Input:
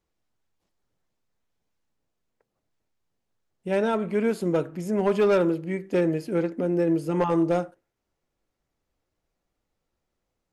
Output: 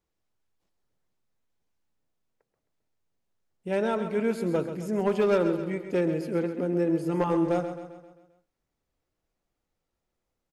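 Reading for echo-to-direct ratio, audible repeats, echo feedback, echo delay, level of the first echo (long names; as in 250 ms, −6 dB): −8.5 dB, 5, 51%, 132 ms, −10.0 dB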